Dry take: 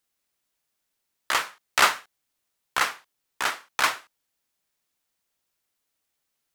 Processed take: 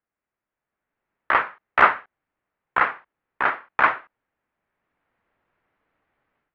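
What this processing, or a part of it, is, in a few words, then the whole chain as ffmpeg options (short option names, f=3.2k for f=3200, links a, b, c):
action camera in a waterproof case: -af "lowpass=f=2k:w=0.5412,lowpass=f=2k:w=1.3066,dynaudnorm=f=580:g=3:m=16dB,volume=-1dB" -ar 48000 -c:a aac -b:a 128k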